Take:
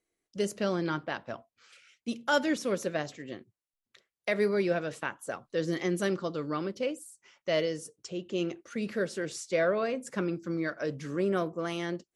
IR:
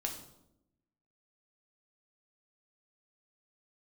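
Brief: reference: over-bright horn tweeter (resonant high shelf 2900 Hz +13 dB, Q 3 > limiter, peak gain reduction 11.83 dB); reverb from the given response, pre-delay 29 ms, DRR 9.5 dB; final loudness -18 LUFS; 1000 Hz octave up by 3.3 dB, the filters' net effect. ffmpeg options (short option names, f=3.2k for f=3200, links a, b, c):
-filter_complex "[0:a]equalizer=f=1k:t=o:g=7,asplit=2[a][b];[1:a]atrim=start_sample=2205,adelay=29[c];[b][c]afir=irnorm=-1:irlink=0,volume=-10.5dB[d];[a][d]amix=inputs=2:normalize=0,highshelf=f=2.9k:t=q:w=3:g=13,volume=12dB,alimiter=limit=-6.5dB:level=0:latency=1"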